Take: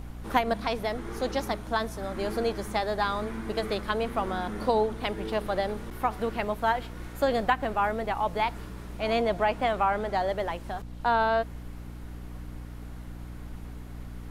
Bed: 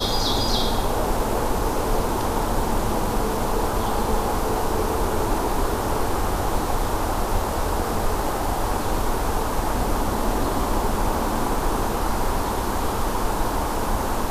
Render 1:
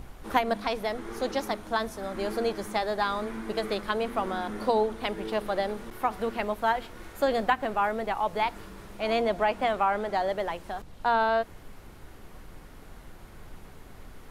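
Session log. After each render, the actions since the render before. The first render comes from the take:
mains-hum notches 60/120/180/240/300 Hz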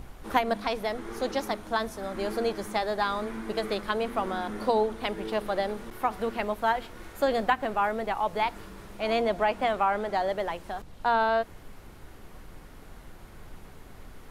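no processing that can be heard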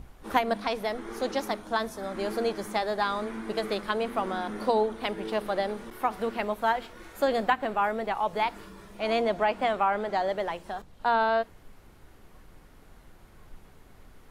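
noise reduction from a noise print 6 dB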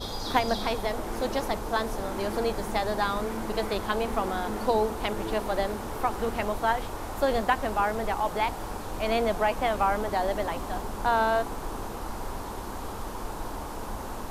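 mix in bed −12 dB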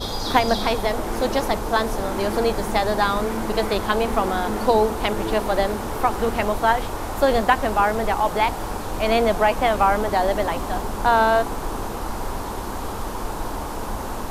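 level +7 dB
brickwall limiter −2 dBFS, peak gain reduction 1 dB

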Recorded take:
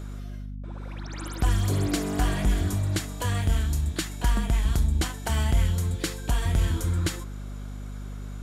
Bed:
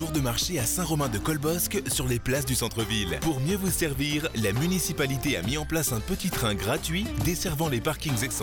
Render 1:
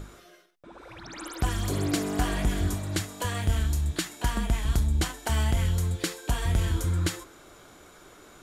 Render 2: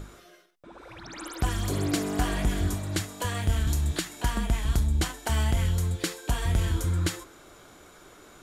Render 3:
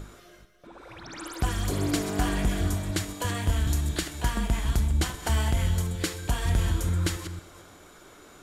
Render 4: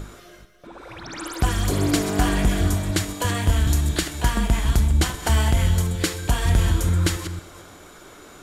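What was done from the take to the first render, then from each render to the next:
mains-hum notches 50/100/150/200/250 Hz
0:03.67–0:04.21: multiband upward and downward compressor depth 70%
delay that plays each chunk backwards 224 ms, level −11.5 dB; four-comb reverb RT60 1.2 s, combs from 30 ms, DRR 13.5 dB
level +6 dB

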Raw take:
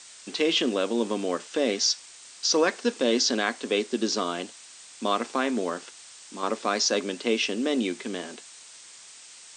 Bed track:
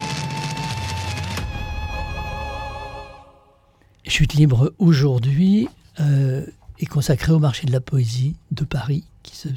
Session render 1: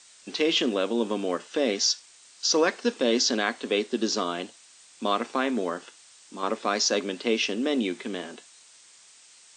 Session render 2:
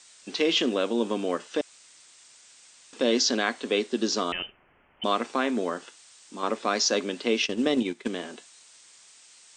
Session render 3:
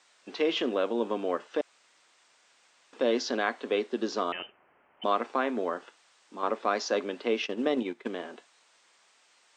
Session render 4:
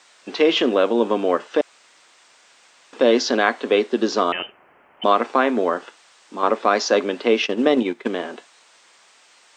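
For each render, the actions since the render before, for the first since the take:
noise reduction from a noise print 6 dB
0:01.61–0:02.93: fill with room tone; 0:04.32–0:05.04: voice inversion scrambler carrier 3,300 Hz; 0:07.41–0:08.08: transient designer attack +9 dB, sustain −11 dB
resonant band-pass 790 Hz, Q 0.58
level +10.5 dB; brickwall limiter −3 dBFS, peak gain reduction 1.5 dB

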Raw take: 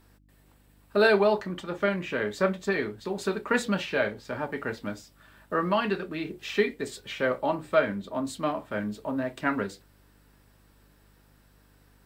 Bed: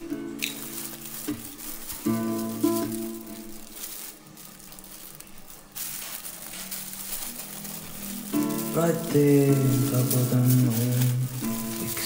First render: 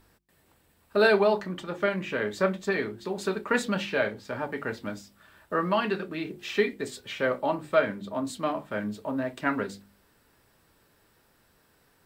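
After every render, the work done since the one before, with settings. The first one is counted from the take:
hum removal 50 Hz, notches 7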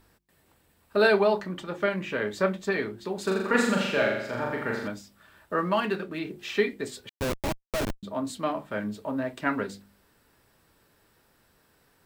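0:03.23–0:04.88: flutter between parallel walls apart 7.2 metres, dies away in 0.84 s
0:05.58–0:06.19: running median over 5 samples
0:07.09–0:08.03: comparator with hysteresis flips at −24 dBFS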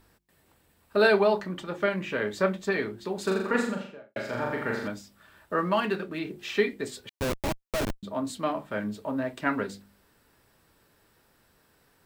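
0:03.30–0:04.16: fade out and dull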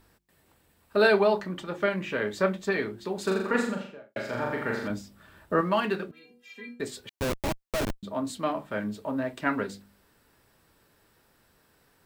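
0:04.90–0:05.61: low-shelf EQ 460 Hz +8 dB
0:06.11–0:06.80: stiff-string resonator 240 Hz, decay 0.38 s, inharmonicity 0.008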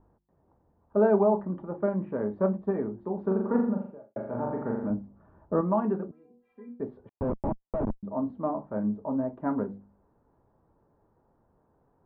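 Chebyshev low-pass filter 940 Hz, order 3
dynamic equaliser 220 Hz, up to +6 dB, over −44 dBFS, Q 3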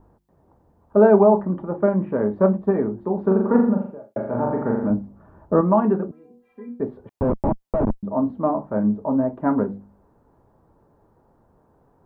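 level +8.5 dB

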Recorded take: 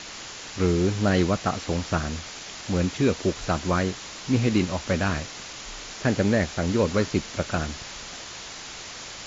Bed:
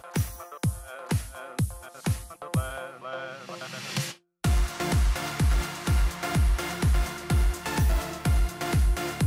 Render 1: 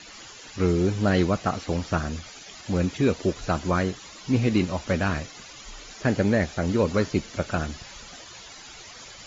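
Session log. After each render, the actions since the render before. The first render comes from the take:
broadband denoise 12 dB, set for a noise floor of −39 dBFS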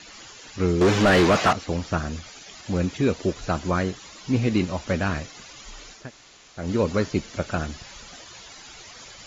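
0:00.81–0:01.53: mid-hump overdrive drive 28 dB, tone 2,300 Hz, clips at −9 dBFS
0:05.99–0:06.62: fill with room tone, crossfade 0.24 s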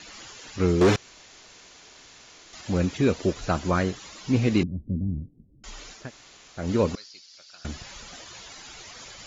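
0:00.96–0:02.53: fill with room tone
0:04.63–0:05.64: inverse Chebyshev low-pass filter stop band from 1,600 Hz, stop band 80 dB
0:06.95–0:07.65: resonant band-pass 4,800 Hz, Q 4.3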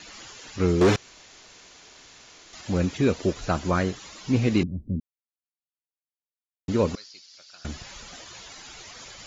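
0:05.00–0:06.68: silence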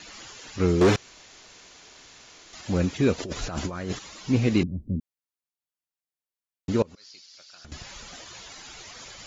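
0:03.18–0:03.99: compressor whose output falls as the input rises −31 dBFS
0:06.82–0:07.72: downward compressor 12 to 1, threshold −43 dBFS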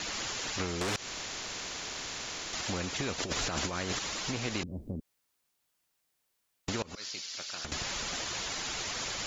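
downward compressor, threshold −27 dBFS, peak gain reduction 11.5 dB
every bin compressed towards the loudest bin 2 to 1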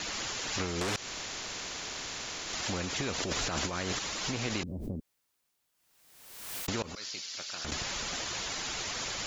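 background raised ahead of every attack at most 48 dB per second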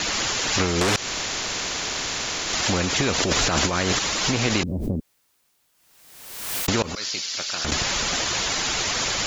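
level +11.5 dB

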